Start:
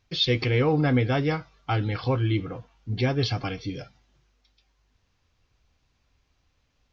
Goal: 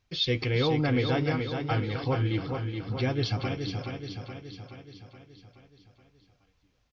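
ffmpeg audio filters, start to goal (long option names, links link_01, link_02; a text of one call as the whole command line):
ffmpeg -i in.wav -af "aecho=1:1:424|848|1272|1696|2120|2544|2968:0.501|0.286|0.163|0.0928|0.0529|0.0302|0.0172,volume=-4dB" out.wav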